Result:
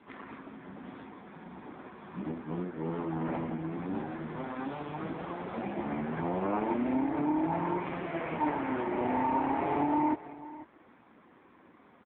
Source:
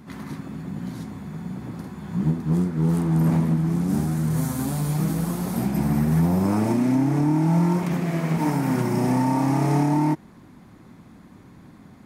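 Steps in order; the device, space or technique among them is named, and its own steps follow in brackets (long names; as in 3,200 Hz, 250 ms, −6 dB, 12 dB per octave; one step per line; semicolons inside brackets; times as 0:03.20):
high-pass filter 190 Hz 6 dB per octave
satellite phone (band-pass filter 380–3,200 Hz; single-tap delay 494 ms −17 dB; AMR narrowband 5.9 kbit/s 8,000 Hz)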